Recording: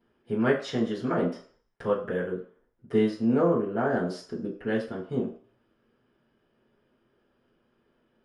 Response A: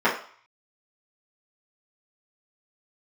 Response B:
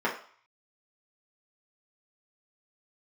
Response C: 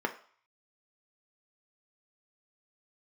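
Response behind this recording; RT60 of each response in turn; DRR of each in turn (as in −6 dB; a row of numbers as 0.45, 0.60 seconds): A; 0.50, 0.50, 0.50 seconds; −10.5, −5.5, 4.5 decibels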